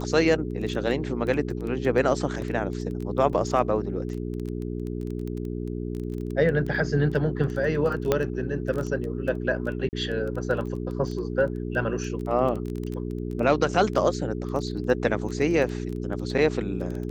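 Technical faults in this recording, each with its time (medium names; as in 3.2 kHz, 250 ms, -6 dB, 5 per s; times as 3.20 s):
crackle 11 per s -30 dBFS
hum 60 Hz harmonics 7 -31 dBFS
3.33 s: dropout 3.1 ms
8.12 s: pop -8 dBFS
9.89–9.93 s: dropout 39 ms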